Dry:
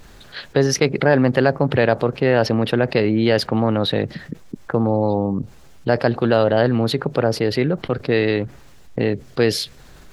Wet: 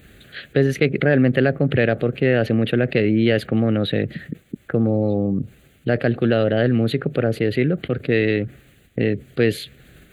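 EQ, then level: HPF 62 Hz; dynamic EQ 9700 Hz, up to -5 dB, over -45 dBFS, Q 0.84; fixed phaser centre 2300 Hz, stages 4; +1.5 dB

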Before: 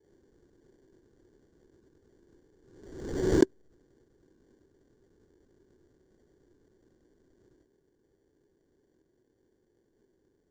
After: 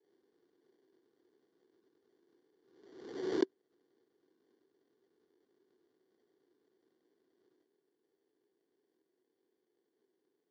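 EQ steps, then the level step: speaker cabinet 440–4700 Hz, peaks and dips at 570 Hz -9 dB, 910 Hz -4 dB, 1600 Hz -7 dB, 2500 Hz -3 dB; -3.0 dB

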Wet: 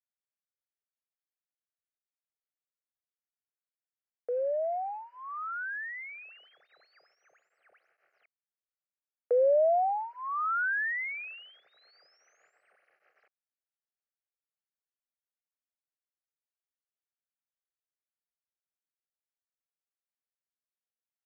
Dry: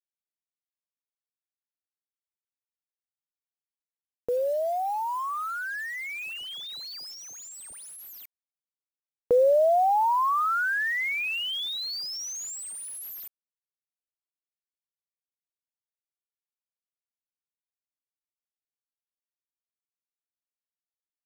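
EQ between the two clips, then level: BPF 530–2300 Hz; air absorption 250 m; fixed phaser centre 970 Hz, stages 6; 0.0 dB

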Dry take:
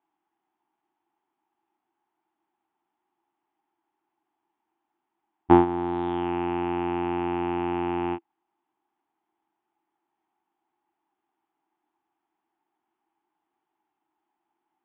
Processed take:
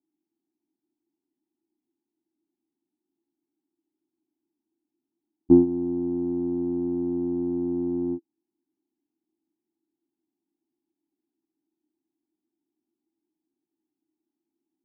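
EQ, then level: synth low-pass 280 Hz, resonance Q 3.4; air absorption 280 m; low shelf 60 Hz -8.5 dB; -2.5 dB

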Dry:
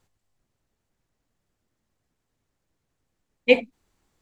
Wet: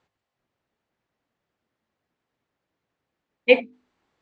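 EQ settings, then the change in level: HPF 270 Hz 6 dB/oct; LPF 3500 Hz 12 dB/oct; notches 50/100/150/200/250/300/350/400/450 Hz; +2.5 dB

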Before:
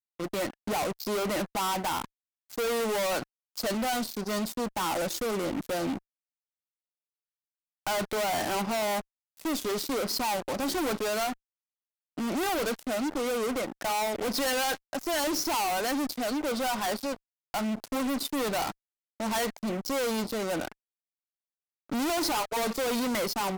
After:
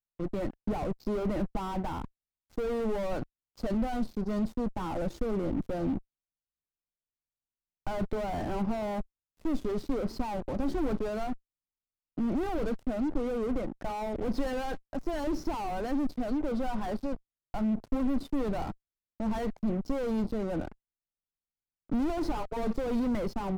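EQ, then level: tilt -4.5 dB/oct; -7.5 dB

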